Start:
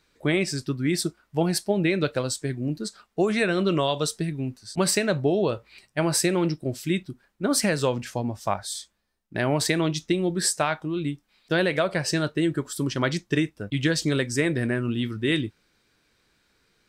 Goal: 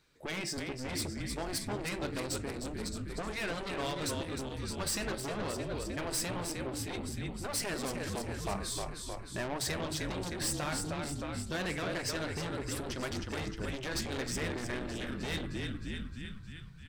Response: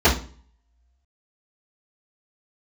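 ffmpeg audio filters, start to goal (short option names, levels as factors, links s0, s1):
-filter_complex "[0:a]equalizer=f=130:t=o:w=0.22:g=10.5,bandreject=f=109.9:t=h:w=4,bandreject=f=219.8:t=h:w=4,bandreject=f=329.7:t=h:w=4,bandreject=f=439.6:t=h:w=4,bandreject=f=549.5:t=h:w=4,bandreject=f=659.4:t=h:w=4,bandreject=f=769.3:t=h:w=4,bandreject=f=879.2:t=h:w=4,bandreject=f=989.1:t=h:w=4,bandreject=f=1099:t=h:w=4,bandreject=f=1208.9:t=h:w=4,bandreject=f=1318.8:t=h:w=4,bandreject=f=1428.7:t=h:w=4,bandreject=f=1538.6:t=h:w=4,bandreject=f=1648.5:t=h:w=4,bandreject=f=1758.4:t=h:w=4,bandreject=f=1868.3:t=h:w=4,bandreject=f=1978.2:t=h:w=4,bandreject=f=2088.1:t=h:w=4,asplit=9[s0][s1][s2][s3][s4][s5][s6][s7][s8];[s1]adelay=309,afreqshift=-42,volume=0.398[s9];[s2]adelay=618,afreqshift=-84,volume=0.245[s10];[s3]adelay=927,afreqshift=-126,volume=0.153[s11];[s4]adelay=1236,afreqshift=-168,volume=0.0944[s12];[s5]adelay=1545,afreqshift=-210,volume=0.0589[s13];[s6]adelay=1854,afreqshift=-252,volume=0.0363[s14];[s7]adelay=2163,afreqshift=-294,volume=0.0226[s15];[s8]adelay=2472,afreqshift=-336,volume=0.014[s16];[s0][s9][s10][s11][s12][s13][s14][s15][s16]amix=inputs=9:normalize=0,asoftclip=type=tanh:threshold=0.0531,afftfilt=real='re*lt(hypot(re,im),0.251)':imag='im*lt(hypot(re,im),0.251)':win_size=1024:overlap=0.75,volume=0.631"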